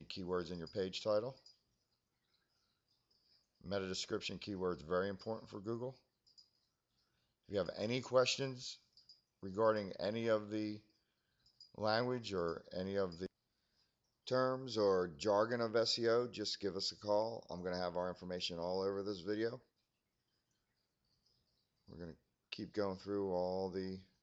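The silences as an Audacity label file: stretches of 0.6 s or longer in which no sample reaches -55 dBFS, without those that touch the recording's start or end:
1.500000	3.610000	silence
6.410000	7.490000	silence
10.790000	11.610000	silence
13.260000	14.270000	silence
19.590000	21.880000	silence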